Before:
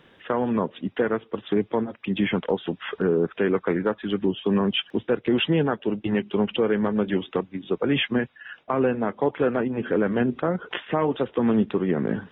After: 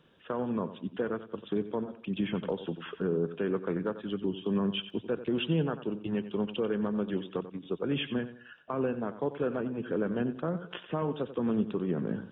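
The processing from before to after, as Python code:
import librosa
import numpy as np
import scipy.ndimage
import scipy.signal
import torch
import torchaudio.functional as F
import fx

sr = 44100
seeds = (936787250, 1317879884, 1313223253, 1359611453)

y = fx.graphic_eq_31(x, sr, hz=(160, 800, 2000), db=(5, -4, -11))
y = fx.echo_feedback(y, sr, ms=91, feedback_pct=33, wet_db=-13)
y = fx.band_squash(y, sr, depth_pct=70, at=(2.43, 2.87))
y = y * 10.0 ** (-8.5 / 20.0)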